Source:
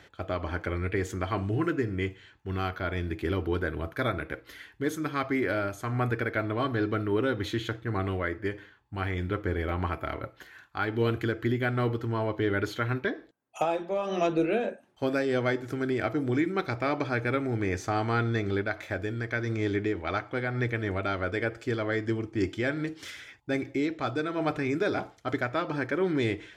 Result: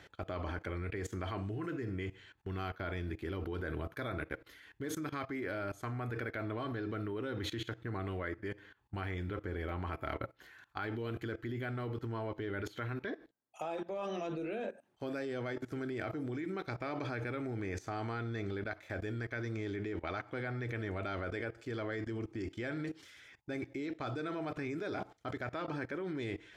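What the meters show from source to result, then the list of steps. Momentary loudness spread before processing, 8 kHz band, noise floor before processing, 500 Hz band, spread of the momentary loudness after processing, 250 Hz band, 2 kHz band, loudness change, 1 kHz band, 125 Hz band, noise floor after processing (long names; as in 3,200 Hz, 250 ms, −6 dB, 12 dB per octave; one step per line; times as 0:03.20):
7 LU, −7.0 dB, −58 dBFS, −10.0 dB, 4 LU, −9.5 dB, −10.0 dB, −10.0 dB, −10.0 dB, −8.5 dB, −67 dBFS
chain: output level in coarse steps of 19 dB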